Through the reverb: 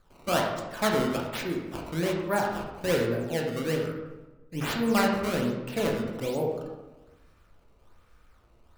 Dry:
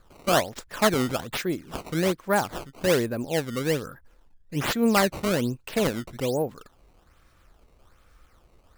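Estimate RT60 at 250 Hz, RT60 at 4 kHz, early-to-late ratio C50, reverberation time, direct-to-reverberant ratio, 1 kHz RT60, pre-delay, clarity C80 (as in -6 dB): 1.3 s, 0.70 s, 3.5 dB, 1.1 s, -0.5 dB, 1.1 s, 17 ms, 6.0 dB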